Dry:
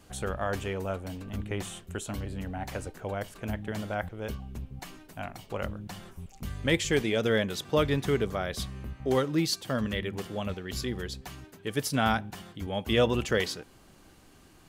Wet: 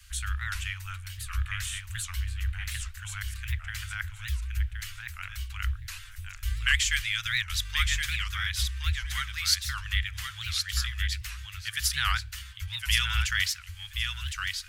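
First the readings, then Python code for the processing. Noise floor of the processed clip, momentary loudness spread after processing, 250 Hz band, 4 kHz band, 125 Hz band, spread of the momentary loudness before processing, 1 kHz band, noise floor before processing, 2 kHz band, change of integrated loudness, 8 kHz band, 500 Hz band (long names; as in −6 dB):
−45 dBFS, 12 LU, below −30 dB, +7.0 dB, +1.0 dB, 15 LU, −4.5 dB, −56 dBFS, +6.0 dB, +1.0 dB, +7.0 dB, below −40 dB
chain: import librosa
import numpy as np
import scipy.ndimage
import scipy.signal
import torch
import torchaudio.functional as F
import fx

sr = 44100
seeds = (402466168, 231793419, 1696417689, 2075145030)

p1 = scipy.signal.sosfilt(scipy.signal.cheby2(4, 60, [170.0, 610.0], 'bandstop', fs=sr, output='sos'), x)
p2 = fx.peak_eq(p1, sr, hz=120.0, db=9.5, octaves=2.1)
p3 = p2 + fx.echo_feedback(p2, sr, ms=1071, feedback_pct=16, wet_db=-5.5, dry=0)
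p4 = fx.record_warp(p3, sr, rpm=78.0, depth_cents=250.0)
y = F.gain(torch.from_numpy(p4), 6.0).numpy()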